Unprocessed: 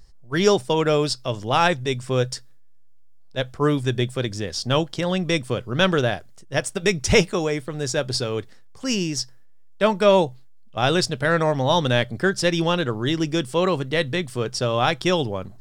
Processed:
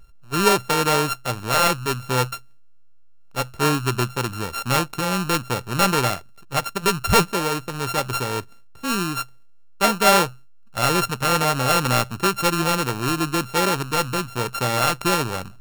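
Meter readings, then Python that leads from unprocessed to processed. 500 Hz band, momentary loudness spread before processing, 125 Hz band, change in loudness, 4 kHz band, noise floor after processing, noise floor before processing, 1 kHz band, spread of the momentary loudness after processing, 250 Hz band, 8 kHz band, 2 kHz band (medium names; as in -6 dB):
-3.5 dB, 9 LU, -0.5 dB, +1.0 dB, +1.0 dB, -43 dBFS, -43 dBFS, +4.5 dB, 9 LU, -1.5 dB, +5.5 dB, +1.5 dB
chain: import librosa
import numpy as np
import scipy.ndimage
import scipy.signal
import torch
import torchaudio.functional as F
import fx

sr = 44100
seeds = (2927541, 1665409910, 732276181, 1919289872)

y = np.r_[np.sort(x[:len(x) // 32 * 32].reshape(-1, 32), axis=1).ravel(), x[len(x) // 32 * 32:]]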